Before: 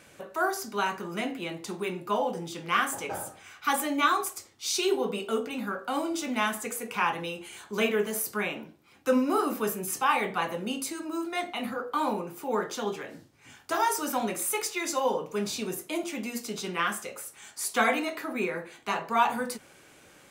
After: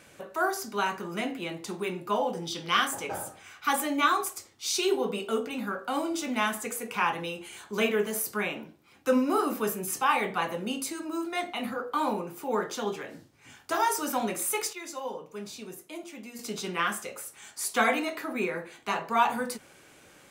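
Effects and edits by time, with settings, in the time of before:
0:02.43–0:02.87: gain on a spectral selection 2,900–6,200 Hz +8 dB
0:14.73–0:16.39: clip gain −9 dB

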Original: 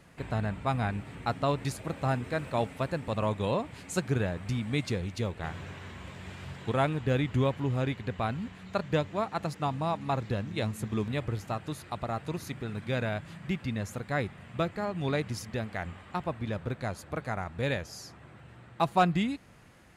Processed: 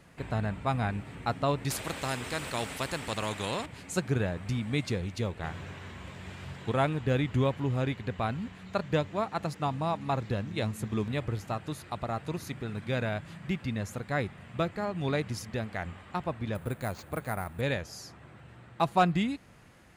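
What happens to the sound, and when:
0:01.70–0:03.66: every bin compressed towards the loudest bin 2 to 1
0:16.55–0:17.61: bad sample-rate conversion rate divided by 4×, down none, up hold

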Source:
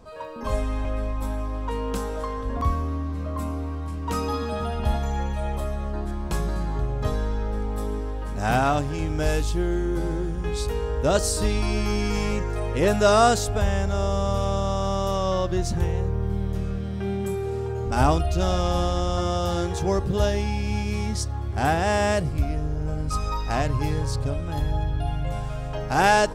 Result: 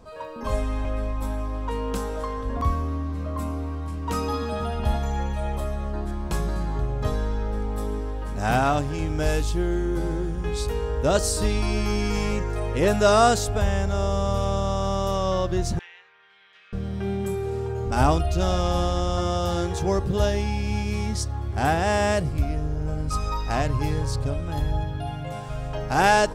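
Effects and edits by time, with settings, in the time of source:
0:15.79–0:16.73: flat-topped band-pass 2,400 Hz, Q 1.3
0:24.82–0:25.48: high-pass filter 75 Hz → 170 Hz

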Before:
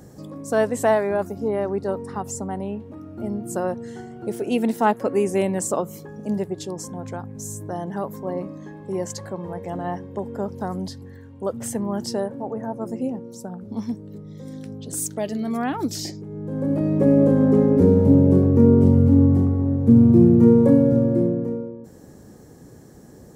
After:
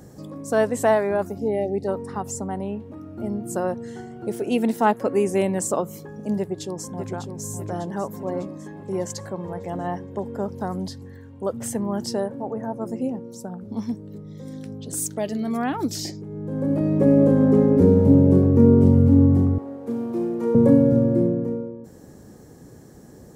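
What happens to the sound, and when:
0:01.39–0:01.87: time-frequency box erased 890–1,800 Hz
0:06.37–0:07.23: delay throw 600 ms, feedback 55%, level −7.5 dB
0:19.58–0:20.55: high-pass filter 550 Hz

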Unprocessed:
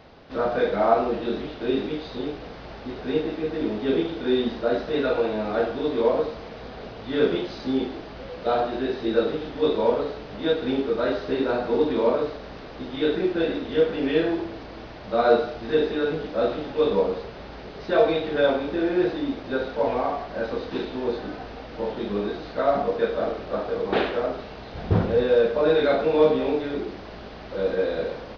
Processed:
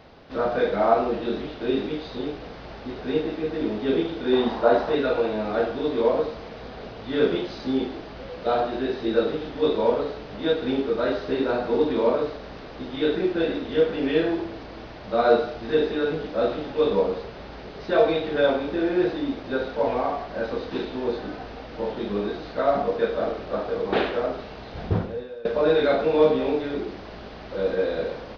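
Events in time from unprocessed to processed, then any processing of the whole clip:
0:04.33–0:04.95: parametric band 900 Hz +13 dB 1.1 octaves
0:24.84–0:25.45: fade out quadratic, to −21.5 dB

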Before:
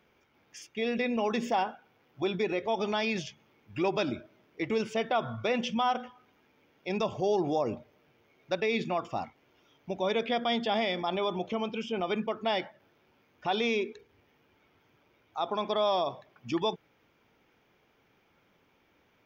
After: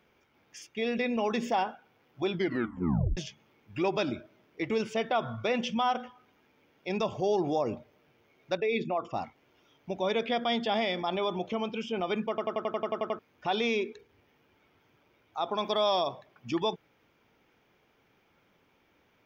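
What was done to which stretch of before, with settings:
0:02.33: tape stop 0.84 s
0:08.57–0:09.14: spectral envelope exaggerated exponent 1.5
0:12.29: stutter in place 0.09 s, 10 plays
0:15.58–0:16.08: high-shelf EQ 4,400 Hz +10 dB

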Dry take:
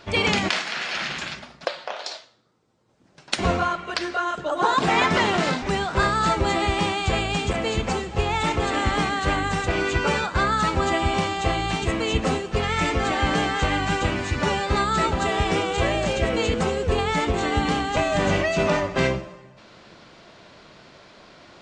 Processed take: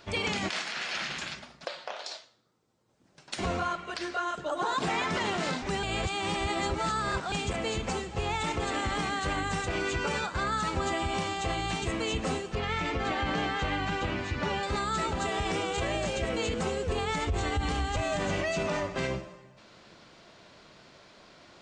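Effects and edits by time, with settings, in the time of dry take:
0:05.83–0:07.32: reverse
0:12.55–0:14.63: low-pass filter 4,400 Hz
0:17.18–0:18.01: low shelf with overshoot 120 Hz +11.5 dB, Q 1.5
whole clip: high-shelf EQ 7,000 Hz +7.5 dB; brickwall limiter −14.5 dBFS; level −6.5 dB

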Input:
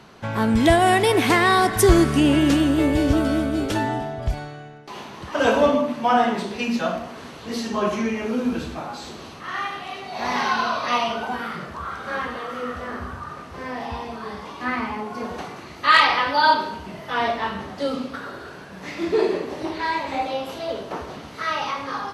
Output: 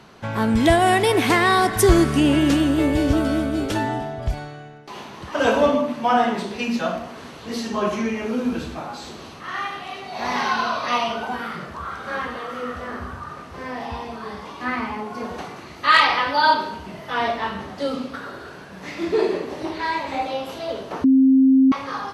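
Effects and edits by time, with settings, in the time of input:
0:21.04–0:21.72: beep over 265 Hz −10.5 dBFS

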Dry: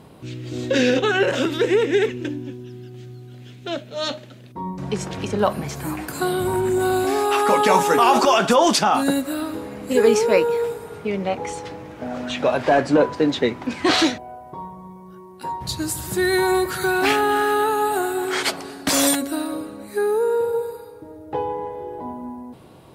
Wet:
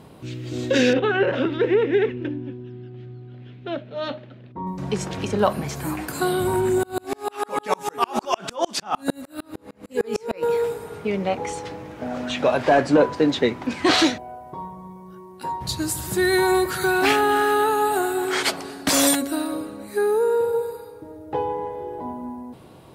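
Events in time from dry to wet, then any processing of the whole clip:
0:00.93–0:04.67: high-frequency loss of the air 350 metres
0:06.83–0:10.43: tremolo with a ramp in dB swelling 6.6 Hz, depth 37 dB

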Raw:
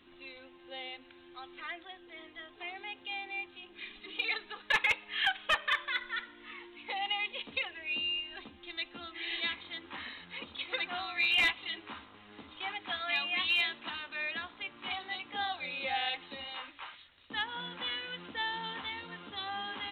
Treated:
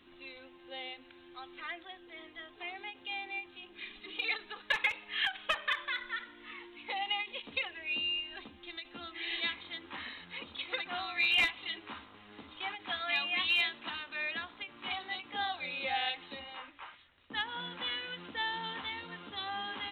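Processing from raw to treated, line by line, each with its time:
0:16.39–0:17.35: high-frequency loss of the air 300 metres
whole clip: every ending faded ahead of time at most 230 dB per second

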